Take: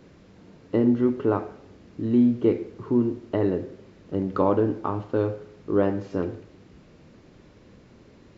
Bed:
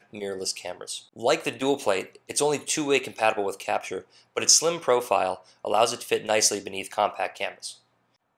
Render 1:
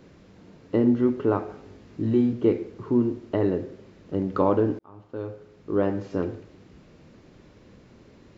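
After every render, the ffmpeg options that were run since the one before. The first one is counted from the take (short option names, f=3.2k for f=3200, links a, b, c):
-filter_complex "[0:a]asettb=1/sr,asplit=3[a][b][c];[a]atrim=end=1.464[d];[b]atrim=start=1.46:end=2.33,asetpts=PTS-STARTPTS,afade=t=in:d=0.004:c=qsin,afade=t=out:st=0.866:d=0.004:c=qsin,asplit=2[e][f];[f]adelay=19,volume=-3dB[g];[e][g]amix=inputs=2:normalize=0,atrim=end_sample=38367[h];[c]atrim=start=2.326[i];[d][h]acrossfade=d=0.004:c1=hsin:c2=qsin[j];[j][i]acrossfade=d=0.004:c1=qsin:c2=hsin,asplit=2[k][l];[k]atrim=end=4.79,asetpts=PTS-STARTPTS,afade=t=out:st=4.786:d=0.004:c=hsin[m];[l]atrim=start=4.79,asetpts=PTS-STARTPTS,afade=t=in:d=1.24[n];[m][n]concat=n=2:v=0:a=1"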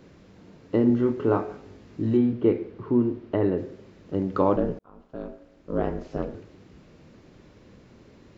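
-filter_complex "[0:a]asettb=1/sr,asplit=3[a][b][c];[a]atrim=end=0.874[d];[b]atrim=start=0.87:end=1.57,asetpts=PTS-STARTPTS,afade=t=in:d=0.004:c=qsin,afade=t=out:st=0.696:d=0.004:c=qsin,asplit=2[e][f];[f]adelay=26,volume=-7dB[g];[e][g]amix=inputs=2:normalize=0,atrim=end_sample=30870[h];[c]atrim=start=1.566[i];[d][h]acrossfade=d=0.004:c1=hsin:c2=qsin[j];[j][i]acrossfade=d=0.004:c1=qsin:c2=hsin,asettb=1/sr,asplit=3[k][l][m];[k]atrim=end=2.174[n];[l]atrim=start=2.17:end=3.58,asetpts=PTS-STARTPTS,afade=t=in:d=0.004:c=qsin,afade=t=out:st=1.406:d=0.004:c=qsin,lowpass=3.4k[o];[m]atrim=start=3.576[p];[n][o]acrossfade=d=0.004:c1=hsin:c2=qsin[q];[q][p]acrossfade=d=0.004:c1=qsin:c2=hsin,asettb=1/sr,asplit=3[r][s][t];[r]atrim=end=4.564[u];[s]atrim=start=4.56:end=6.35,asetpts=PTS-STARTPTS,afade=t=in:d=0.004:c=qsin,afade=t=out:st=1.786:d=0.004:c=qsin,aeval=exprs='val(0)*sin(2*PI*130*n/s)':c=same[v];[t]atrim=start=6.346[w];[u][v]acrossfade=d=0.004:c1=hsin:c2=qsin[x];[x][w]acrossfade=d=0.004:c1=qsin:c2=hsin"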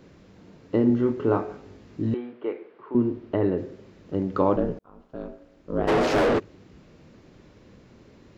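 -filter_complex "[0:a]asettb=1/sr,asplit=3[a][b][c];[a]atrim=end=2.144[d];[b]atrim=start=2.14:end=2.95,asetpts=PTS-STARTPTS,afade=t=in:d=0.004:c=qsin,afade=t=out:st=0.806:d=0.004:c=qsin,highpass=620,lowpass=2.8k[e];[c]atrim=start=2.946[f];[d][e]acrossfade=d=0.004:c1=hsin:c2=qsin[g];[g][f]acrossfade=d=0.004:c1=qsin:c2=hsin,asplit=3[h][i][j];[h]afade=t=out:st=5.87:d=0.02[k];[i]asplit=2[l][m];[m]highpass=f=720:p=1,volume=42dB,asoftclip=type=tanh:threshold=-13dB[n];[l][n]amix=inputs=2:normalize=0,lowpass=f=2.2k:p=1,volume=-6dB,afade=t=in:st=5.87:d=0.02,afade=t=out:st=6.38:d=0.02[o];[j]afade=t=in:st=6.38:d=0.02[p];[k][o][p]amix=inputs=3:normalize=0"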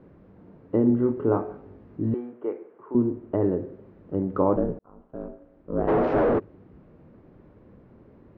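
-af "lowpass=1.2k"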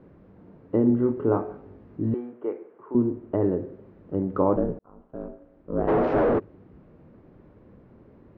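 -af anull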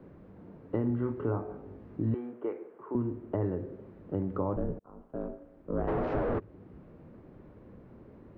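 -filter_complex "[0:a]acrossover=split=130|880[a][b][c];[b]acompressor=threshold=-31dB:ratio=6[d];[c]alimiter=level_in=8.5dB:limit=-24dB:level=0:latency=1:release=498,volume=-8.5dB[e];[a][d][e]amix=inputs=3:normalize=0"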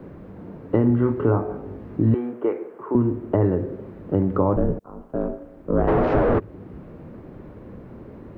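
-af "volume=11.5dB"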